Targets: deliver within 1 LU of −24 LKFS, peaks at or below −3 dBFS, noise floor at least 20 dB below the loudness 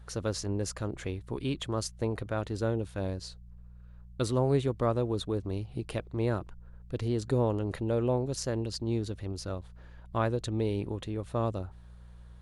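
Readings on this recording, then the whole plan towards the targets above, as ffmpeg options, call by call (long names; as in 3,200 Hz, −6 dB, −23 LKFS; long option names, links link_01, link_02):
mains hum 60 Hz; hum harmonics up to 180 Hz; level of the hum −48 dBFS; integrated loudness −32.5 LKFS; sample peak −15.0 dBFS; target loudness −24.0 LKFS
→ -af "bandreject=frequency=60:width_type=h:width=4,bandreject=frequency=120:width_type=h:width=4,bandreject=frequency=180:width_type=h:width=4"
-af "volume=8.5dB"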